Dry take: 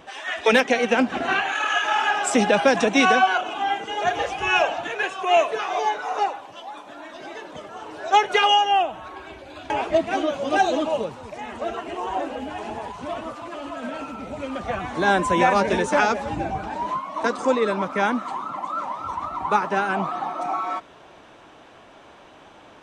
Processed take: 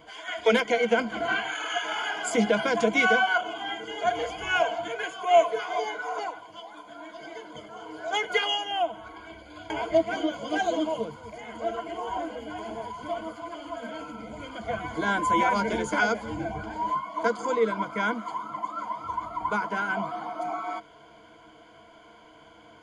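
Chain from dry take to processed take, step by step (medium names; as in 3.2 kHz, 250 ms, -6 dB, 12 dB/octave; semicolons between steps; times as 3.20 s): rippled EQ curve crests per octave 1.8, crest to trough 16 dB; trim -7.5 dB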